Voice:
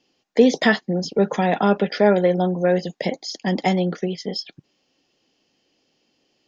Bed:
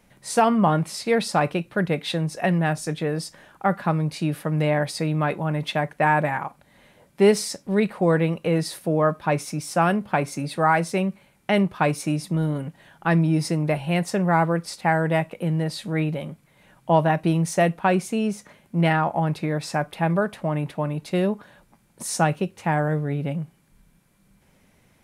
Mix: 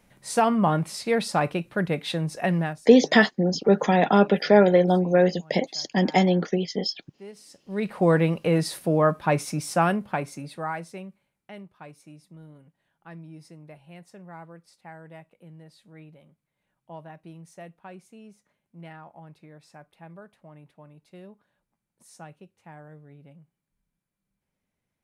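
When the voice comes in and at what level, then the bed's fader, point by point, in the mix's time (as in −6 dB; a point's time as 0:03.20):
2.50 s, 0.0 dB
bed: 0:02.61 −2.5 dB
0:02.96 −26.5 dB
0:07.32 −26.5 dB
0:07.98 0 dB
0:09.70 0 dB
0:11.65 −23.5 dB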